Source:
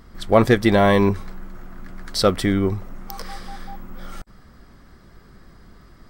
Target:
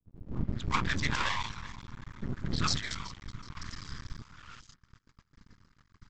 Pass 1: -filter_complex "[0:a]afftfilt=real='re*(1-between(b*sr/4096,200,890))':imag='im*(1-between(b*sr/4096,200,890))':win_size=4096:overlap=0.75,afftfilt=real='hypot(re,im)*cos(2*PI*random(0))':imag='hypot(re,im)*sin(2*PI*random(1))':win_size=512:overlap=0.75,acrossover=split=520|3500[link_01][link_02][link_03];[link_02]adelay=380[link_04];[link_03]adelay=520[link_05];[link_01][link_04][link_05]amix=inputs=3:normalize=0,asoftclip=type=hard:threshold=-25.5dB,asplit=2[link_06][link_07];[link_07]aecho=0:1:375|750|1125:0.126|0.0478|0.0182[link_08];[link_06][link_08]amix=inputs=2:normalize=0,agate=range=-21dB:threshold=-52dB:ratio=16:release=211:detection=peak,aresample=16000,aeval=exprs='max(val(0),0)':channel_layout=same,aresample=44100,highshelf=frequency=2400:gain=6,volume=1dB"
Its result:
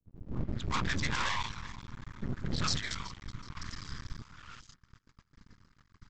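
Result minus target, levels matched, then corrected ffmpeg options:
hard clipping: distortion +29 dB
-filter_complex "[0:a]afftfilt=real='re*(1-between(b*sr/4096,200,890))':imag='im*(1-between(b*sr/4096,200,890))':win_size=4096:overlap=0.75,afftfilt=real='hypot(re,im)*cos(2*PI*random(0))':imag='hypot(re,im)*sin(2*PI*random(1))':win_size=512:overlap=0.75,acrossover=split=520|3500[link_01][link_02][link_03];[link_02]adelay=380[link_04];[link_03]adelay=520[link_05];[link_01][link_04][link_05]amix=inputs=3:normalize=0,asoftclip=type=hard:threshold=-14.5dB,asplit=2[link_06][link_07];[link_07]aecho=0:1:375|750|1125:0.126|0.0478|0.0182[link_08];[link_06][link_08]amix=inputs=2:normalize=0,agate=range=-21dB:threshold=-52dB:ratio=16:release=211:detection=peak,aresample=16000,aeval=exprs='max(val(0),0)':channel_layout=same,aresample=44100,highshelf=frequency=2400:gain=6,volume=1dB"

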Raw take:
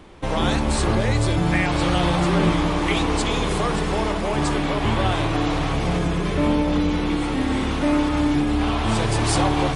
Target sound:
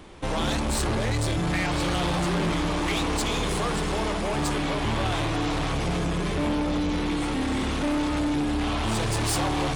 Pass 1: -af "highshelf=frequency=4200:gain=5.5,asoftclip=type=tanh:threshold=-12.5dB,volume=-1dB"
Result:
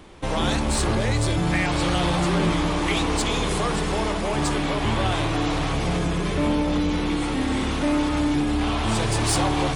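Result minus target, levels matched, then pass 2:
soft clipping: distortion −9 dB
-af "highshelf=frequency=4200:gain=5.5,asoftclip=type=tanh:threshold=-20.5dB,volume=-1dB"

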